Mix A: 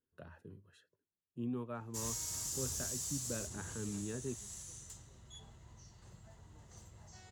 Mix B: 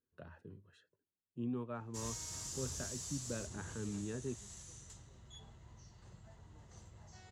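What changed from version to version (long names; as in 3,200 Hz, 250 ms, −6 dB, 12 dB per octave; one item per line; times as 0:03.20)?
master: add high-frequency loss of the air 56 metres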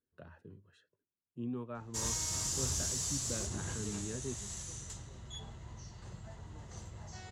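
background +9.0 dB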